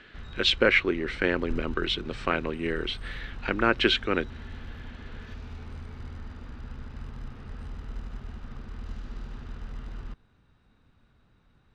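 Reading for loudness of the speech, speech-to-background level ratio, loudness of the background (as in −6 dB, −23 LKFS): −26.5 LKFS, 16.5 dB, −43.0 LKFS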